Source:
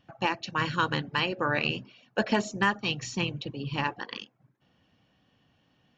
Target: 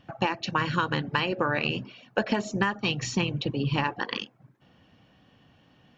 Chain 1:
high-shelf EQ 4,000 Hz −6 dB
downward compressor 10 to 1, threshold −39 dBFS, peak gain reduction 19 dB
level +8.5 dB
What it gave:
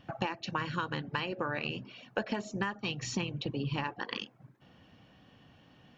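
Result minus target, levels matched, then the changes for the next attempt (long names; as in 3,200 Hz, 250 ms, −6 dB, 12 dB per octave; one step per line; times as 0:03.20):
downward compressor: peak gain reduction +8 dB
change: downward compressor 10 to 1, threshold −30 dBFS, peak gain reduction 11 dB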